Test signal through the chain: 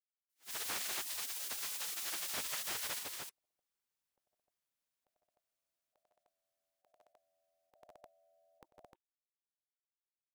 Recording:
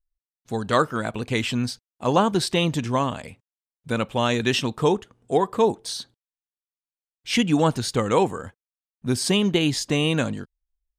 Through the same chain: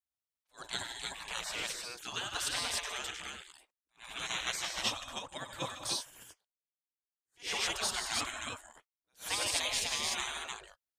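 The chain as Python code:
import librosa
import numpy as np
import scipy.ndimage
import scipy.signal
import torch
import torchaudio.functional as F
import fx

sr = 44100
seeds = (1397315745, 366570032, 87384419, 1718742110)

y = fx.echo_multitap(x, sr, ms=(95, 154, 164, 219, 304), db=(-11.0, -11.0, -14.0, -13.5, -3.5))
y = fx.spec_gate(y, sr, threshold_db=-20, keep='weak')
y = fx.attack_slew(y, sr, db_per_s=300.0)
y = y * librosa.db_to_amplitude(-3.0)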